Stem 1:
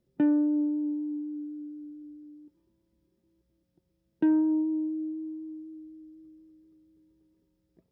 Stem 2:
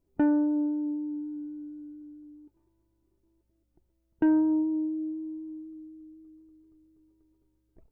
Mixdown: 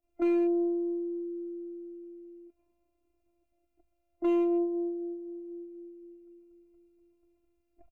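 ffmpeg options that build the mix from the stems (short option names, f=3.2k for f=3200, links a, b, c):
-filter_complex "[0:a]lowpass=f=1k:w=0.5412,lowpass=f=1k:w=1.3066,volume=-9dB[a];[1:a]adynamicequalizer=threshold=0.01:dfrequency=370:dqfactor=2.4:tfrequency=370:tqfactor=2.4:attack=5:release=100:ratio=0.375:range=2:mode=cutabove:tftype=bell,asoftclip=type=hard:threshold=-23dB,adelay=25,volume=-1dB[b];[a][b]amix=inputs=2:normalize=0,superequalizer=7b=0.316:8b=3.16:10b=2:12b=3.55,afftfilt=real='hypot(re,im)*cos(PI*b)':imag='0':win_size=512:overlap=0.75"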